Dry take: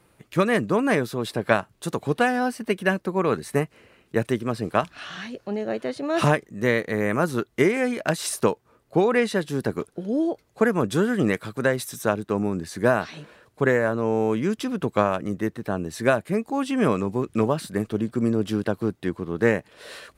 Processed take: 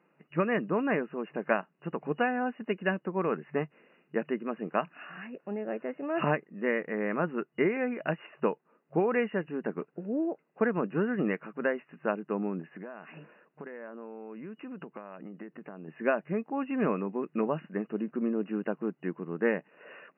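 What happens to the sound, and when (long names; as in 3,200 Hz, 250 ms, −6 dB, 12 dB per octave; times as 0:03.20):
0:12.61–0:15.88: downward compressor 20 to 1, threshold −30 dBFS
whole clip: brick-wall band-pass 140–2,900 Hz; notch filter 2,300 Hz, Q 16; level −7 dB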